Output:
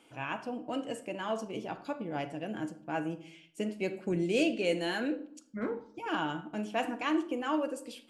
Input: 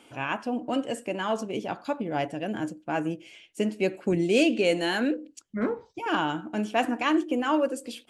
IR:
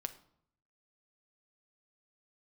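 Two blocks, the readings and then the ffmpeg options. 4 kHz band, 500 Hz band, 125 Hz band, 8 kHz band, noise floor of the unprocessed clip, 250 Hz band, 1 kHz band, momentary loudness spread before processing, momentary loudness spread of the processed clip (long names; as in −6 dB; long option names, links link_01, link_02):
−6.5 dB, −6.5 dB, −5.5 dB, −7.0 dB, −60 dBFS, −6.5 dB, −7.0 dB, 9 LU, 9 LU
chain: -filter_complex "[1:a]atrim=start_sample=2205[link_01];[0:a][link_01]afir=irnorm=-1:irlink=0,volume=-5dB"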